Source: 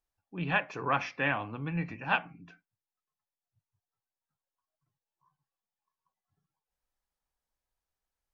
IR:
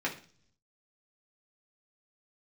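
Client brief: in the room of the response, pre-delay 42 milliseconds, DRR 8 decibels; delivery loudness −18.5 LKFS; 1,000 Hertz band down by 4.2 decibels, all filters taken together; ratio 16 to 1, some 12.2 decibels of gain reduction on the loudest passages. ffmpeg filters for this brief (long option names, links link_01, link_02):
-filter_complex "[0:a]equalizer=frequency=1000:width_type=o:gain=-5.5,acompressor=threshold=-37dB:ratio=16,asplit=2[link_01][link_02];[1:a]atrim=start_sample=2205,adelay=42[link_03];[link_02][link_03]afir=irnorm=-1:irlink=0,volume=-15dB[link_04];[link_01][link_04]amix=inputs=2:normalize=0,volume=24dB"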